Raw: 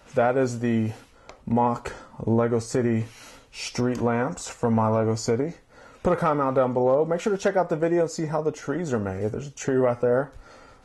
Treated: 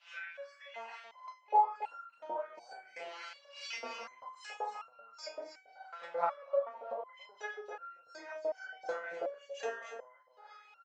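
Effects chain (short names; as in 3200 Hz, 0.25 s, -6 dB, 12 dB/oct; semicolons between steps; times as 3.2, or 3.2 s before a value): short-time reversal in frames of 82 ms; LPF 4900 Hz 24 dB/oct; bell 570 Hz +12.5 dB 1 oct; notches 50/100/150/200/250/300/350/400/450/500 Hz; compressor 16:1, threshold -26 dBFS, peak gain reduction 18 dB; LFO high-pass saw up 2.6 Hz 660–3000 Hz; pitch shift +0.5 st; high-pass sweep 2800 Hz -> 85 Hz, 0.02–2.8; echo 0.279 s -10.5 dB; stepped resonator 2.7 Hz 170–1400 Hz; gain +11 dB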